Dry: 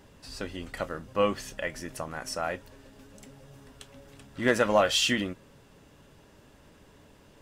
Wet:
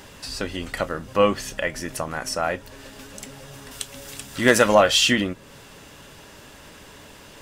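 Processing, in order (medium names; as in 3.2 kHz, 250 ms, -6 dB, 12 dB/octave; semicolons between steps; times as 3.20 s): 3.71–4.75 s: treble shelf 4.3 kHz +11 dB; tape noise reduction on one side only encoder only; trim +7 dB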